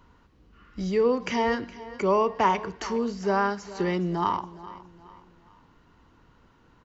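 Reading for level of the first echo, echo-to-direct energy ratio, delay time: −17.0 dB, −16.5 dB, 416 ms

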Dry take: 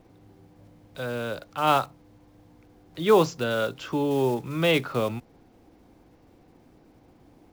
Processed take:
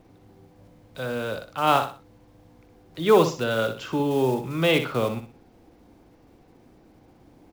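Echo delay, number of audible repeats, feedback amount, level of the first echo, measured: 62 ms, 3, 30%, −9.0 dB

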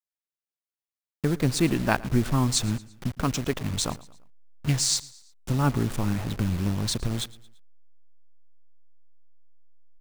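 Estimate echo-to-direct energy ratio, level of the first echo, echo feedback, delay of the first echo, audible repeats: −20.0 dB, −21.0 dB, 46%, 113 ms, 3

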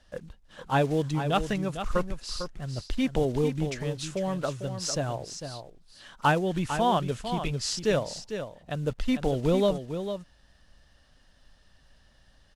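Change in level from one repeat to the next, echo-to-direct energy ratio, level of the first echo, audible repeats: repeats not evenly spaced, −9.0 dB, −9.0 dB, 1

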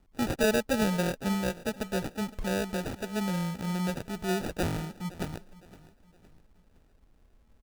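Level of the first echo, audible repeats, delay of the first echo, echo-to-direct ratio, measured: −19.0 dB, 3, 513 ms, −18.5 dB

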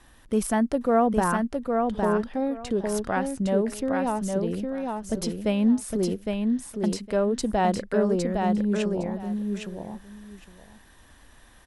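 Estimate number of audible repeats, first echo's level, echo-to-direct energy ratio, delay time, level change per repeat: 2, −4.0 dB, −4.0 dB, 810 ms, −15.5 dB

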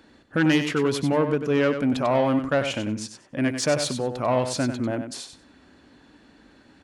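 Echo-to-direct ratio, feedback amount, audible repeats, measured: −8.5 dB, 17%, 2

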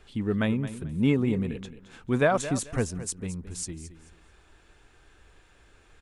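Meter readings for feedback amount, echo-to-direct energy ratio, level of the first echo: 24%, −13.5 dB, −13.5 dB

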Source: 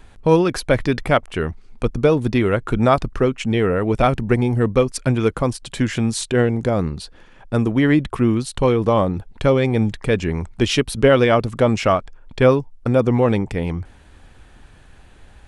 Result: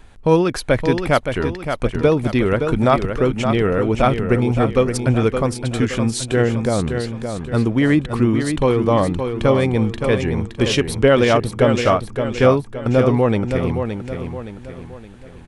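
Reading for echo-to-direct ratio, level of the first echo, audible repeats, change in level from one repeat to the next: −6.0 dB, −7.0 dB, 4, −7.5 dB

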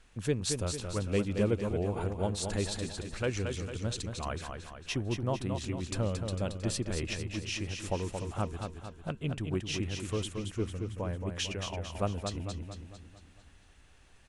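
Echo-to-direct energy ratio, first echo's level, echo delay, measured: −5.0 dB, −6.0 dB, 225 ms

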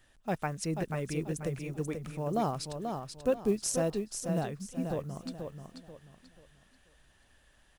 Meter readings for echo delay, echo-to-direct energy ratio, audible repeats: 486 ms, −5.5 dB, 3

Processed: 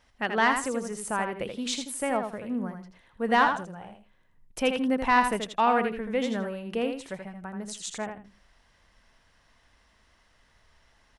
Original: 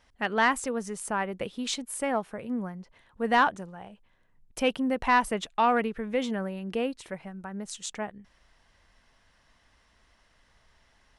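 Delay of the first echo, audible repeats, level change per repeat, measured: 81 ms, 2, −14.0 dB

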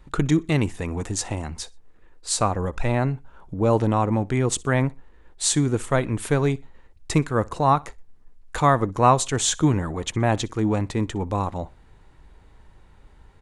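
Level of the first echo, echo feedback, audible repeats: −24.0 dB, 33%, 2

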